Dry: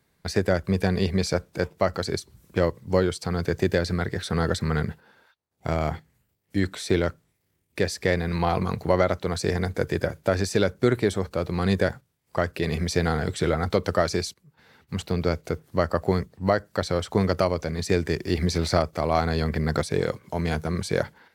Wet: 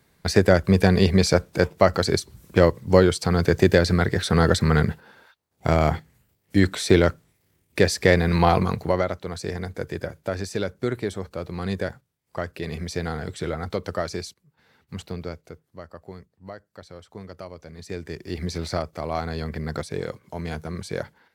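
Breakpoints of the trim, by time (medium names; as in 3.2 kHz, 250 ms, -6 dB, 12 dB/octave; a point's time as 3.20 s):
8.49 s +6 dB
9.18 s -5 dB
15.03 s -5 dB
15.76 s -17.5 dB
17.29 s -17.5 dB
18.47 s -5 dB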